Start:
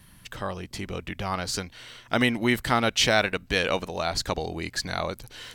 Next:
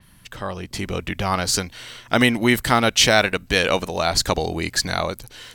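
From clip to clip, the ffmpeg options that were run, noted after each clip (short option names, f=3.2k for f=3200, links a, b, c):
-af "dynaudnorm=f=140:g=9:m=6.5dB,adynamicequalizer=threshold=0.0158:dfrequency=5600:dqfactor=0.7:tfrequency=5600:tqfactor=0.7:attack=5:release=100:ratio=0.375:range=2.5:mode=boostabove:tftype=highshelf,volume=1dB"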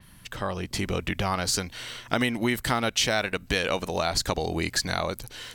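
-af "acompressor=threshold=-24dB:ratio=3"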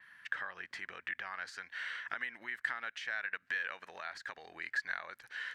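-af "acompressor=threshold=-33dB:ratio=6,bandpass=f=1.7k:t=q:w=5.8:csg=0,volume=8.5dB"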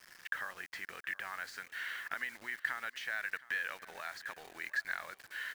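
-af "acrusher=bits=8:mix=0:aa=0.000001,aecho=1:1:719|1438|2157:0.106|0.0455|0.0196"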